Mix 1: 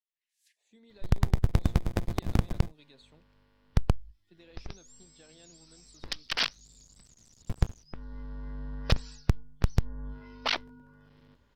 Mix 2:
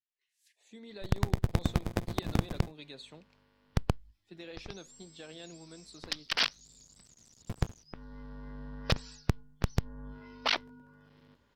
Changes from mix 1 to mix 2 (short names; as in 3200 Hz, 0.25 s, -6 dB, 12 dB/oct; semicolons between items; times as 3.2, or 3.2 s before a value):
speech +10.0 dB; master: add low shelf 70 Hz -11.5 dB